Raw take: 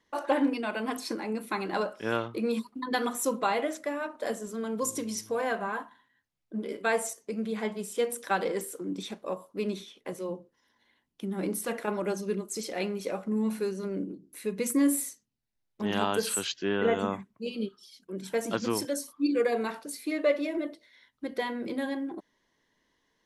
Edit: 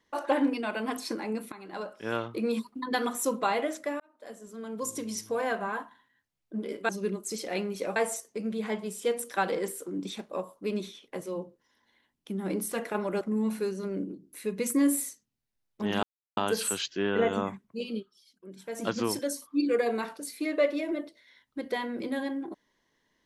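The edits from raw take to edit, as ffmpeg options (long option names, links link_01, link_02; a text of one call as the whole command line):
ffmpeg -i in.wav -filter_complex "[0:a]asplit=9[link_01][link_02][link_03][link_04][link_05][link_06][link_07][link_08][link_09];[link_01]atrim=end=1.52,asetpts=PTS-STARTPTS,afade=type=out:start_time=1.516:duration=0.004:curve=hsin:silence=0.125893[link_10];[link_02]atrim=start=1.52:end=4,asetpts=PTS-STARTPTS,afade=type=in:duration=0.82:silence=0.125893,afade=type=out:start_time=2.476:duration=0.004:curve=hsin[link_11];[link_03]atrim=start=4:end=6.892,asetpts=PTS-STARTPTS,afade=type=in:duration=1.25[link_12];[link_04]atrim=start=12.138:end=13.212[link_13];[link_05]atrim=start=6.888:end=12.142[link_14];[link_06]atrim=start=13.208:end=16.03,asetpts=PTS-STARTPTS,afade=type=out:start_time=2.818:duration=0.004:curve=hsin,apad=pad_dur=0.34[link_15];[link_07]atrim=start=16.03:end=17.72,asetpts=PTS-STARTPTS,afade=type=in:duration=0.004:curve=hsin,afade=type=out:start_time=1.55:duration=0.14:silence=0.354813[link_16];[link_08]atrim=start=17.72:end=18.37,asetpts=PTS-STARTPTS,volume=-9dB[link_17];[link_09]atrim=start=18.37,asetpts=PTS-STARTPTS,afade=type=in:duration=0.14:silence=0.354813[link_18];[link_10][link_11][link_12]concat=n=3:v=0:a=1[link_19];[link_19][link_13]acrossfade=duration=0.004:curve1=hsin:curve2=hsin[link_20];[link_20][link_14]acrossfade=duration=0.004:curve1=hsin:curve2=hsin[link_21];[link_15][link_16][link_17][link_18]concat=n=4:v=0:a=1[link_22];[link_21][link_22]acrossfade=duration=0.004:curve1=hsin:curve2=hsin" out.wav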